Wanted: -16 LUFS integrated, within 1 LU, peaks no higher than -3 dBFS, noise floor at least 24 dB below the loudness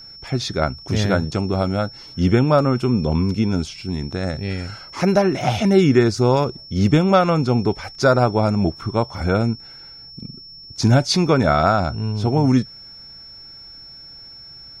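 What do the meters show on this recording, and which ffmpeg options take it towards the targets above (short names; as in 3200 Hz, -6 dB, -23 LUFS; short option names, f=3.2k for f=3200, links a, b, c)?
steady tone 5400 Hz; tone level -38 dBFS; loudness -19.0 LUFS; peak -2.5 dBFS; loudness target -16.0 LUFS
-> -af "bandreject=f=5.4k:w=30"
-af "volume=3dB,alimiter=limit=-3dB:level=0:latency=1"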